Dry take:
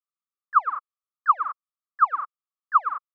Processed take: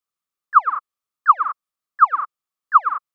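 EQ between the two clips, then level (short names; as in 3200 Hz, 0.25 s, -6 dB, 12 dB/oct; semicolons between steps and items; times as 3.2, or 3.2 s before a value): dynamic EQ 640 Hz, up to -4 dB, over -34 dBFS, Q 1.7; +6.5 dB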